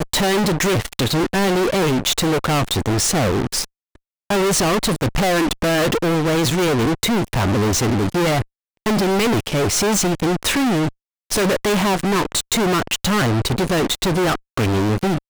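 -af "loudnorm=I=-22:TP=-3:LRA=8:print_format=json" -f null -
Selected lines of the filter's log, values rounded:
"input_i" : "-18.7",
"input_tp" : "-11.9",
"input_lra" : "0.9",
"input_thresh" : "-28.8",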